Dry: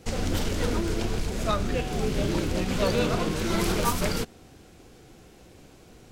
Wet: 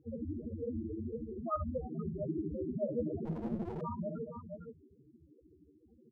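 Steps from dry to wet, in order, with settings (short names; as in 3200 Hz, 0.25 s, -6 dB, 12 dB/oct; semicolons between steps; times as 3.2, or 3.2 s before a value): HPF 68 Hz 12 dB/oct; notches 50/100/150/200 Hz; doubler 13 ms -7 dB; tapped delay 58/61/231/478 ms -17.5/-7.5/-17.5/-8 dB; tremolo 13 Hz, depth 52%; loudest bins only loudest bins 4; 0.46–1.56 steep low-pass 3800 Hz; 3.25–3.81 running maximum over 33 samples; gain -4.5 dB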